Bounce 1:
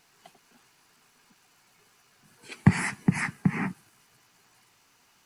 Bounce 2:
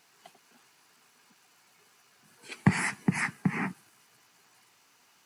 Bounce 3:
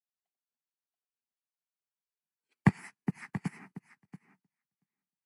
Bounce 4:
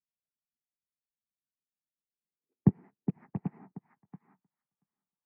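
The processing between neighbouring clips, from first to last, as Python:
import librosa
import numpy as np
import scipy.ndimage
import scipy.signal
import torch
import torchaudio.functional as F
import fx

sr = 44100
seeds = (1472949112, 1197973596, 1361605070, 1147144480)

y1 = fx.highpass(x, sr, hz=210.0, slope=6)
y2 = fx.echo_feedback(y1, sr, ms=682, feedback_pct=22, wet_db=-5.5)
y2 = fx.upward_expand(y2, sr, threshold_db=-46.0, expansion=2.5)
y3 = fx.rattle_buzz(y2, sr, strikes_db=-28.0, level_db=-25.0)
y3 = fx.filter_sweep_lowpass(y3, sr, from_hz=190.0, to_hz=1100.0, start_s=1.23, end_s=4.44, q=1.4)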